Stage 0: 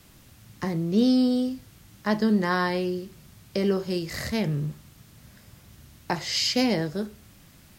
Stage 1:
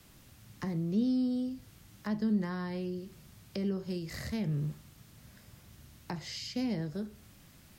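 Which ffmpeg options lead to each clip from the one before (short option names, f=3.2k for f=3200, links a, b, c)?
-filter_complex "[0:a]acrossover=split=250[a][b];[b]acompressor=threshold=-37dB:ratio=4[c];[a][c]amix=inputs=2:normalize=0,volume=-4.5dB"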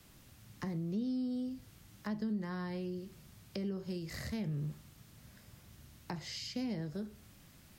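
-af "acompressor=threshold=-33dB:ratio=2.5,volume=-2dB"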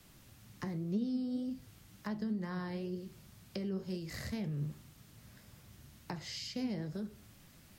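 -af "flanger=delay=3.5:depth=7.4:regen=72:speed=2:shape=triangular,volume=4.5dB"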